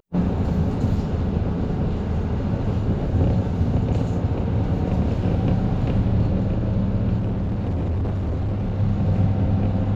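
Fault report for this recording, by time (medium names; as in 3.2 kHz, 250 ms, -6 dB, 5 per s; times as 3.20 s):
7.18–8.78 s: clipped -20.5 dBFS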